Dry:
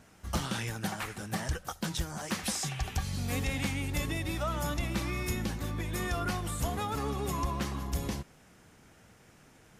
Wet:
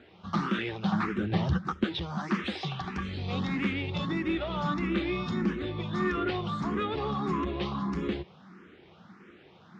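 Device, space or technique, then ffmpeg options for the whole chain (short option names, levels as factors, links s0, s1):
barber-pole phaser into a guitar amplifier: -filter_complex "[0:a]highpass=55,asplit=2[s0][s1];[s1]afreqshift=1.6[s2];[s0][s2]amix=inputs=2:normalize=1,asoftclip=type=tanh:threshold=0.0282,highpass=84,equalizer=f=120:t=q:w=4:g=-8,equalizer=f=190:t=q:w=4:g=9,equalizer=f=360:t=q:w=4:g=9,equalizer=f=640:t=q:w=4:g=-3,equalizer=f=1200:t=q:w=4:g=6,equalizer=f=3600:t=q:w=4:g=4,lowpass=f=3900:w=0.5412,lowpass=f=3900:w=1.3066,asettb=1/sr,asplit=3[s3][s4][s5];[s3]atrim=end=0.924[s6];[s4]atrim=start=0.92:end=1.84,asetpts=PTS-STARTPTS,afade=t=in:d=0.004:c=qsin,afade=t=out:st=0.916:d=0.004:c=qsin,equalizer=f=93:w=0.37:g=11.5[s7];[s5]atrim=start=1.836[s8];[s6][s7]acrossfade=d=0.004:c1=hsin:c2=qsin[s9];[s9][s8]acrossfade=d=0.004:c1=qsin:c2=hsin,volume=2"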